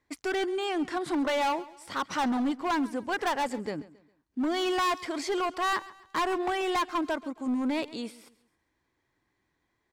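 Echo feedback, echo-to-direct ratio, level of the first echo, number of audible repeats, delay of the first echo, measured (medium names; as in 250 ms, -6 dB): 37%, -18.5 dB, -19.0 dB, 2, 135 ms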